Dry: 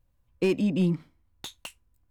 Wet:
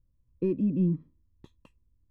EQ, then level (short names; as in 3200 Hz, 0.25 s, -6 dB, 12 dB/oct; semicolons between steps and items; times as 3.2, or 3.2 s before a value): running mean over 60 samples; 0.0 dB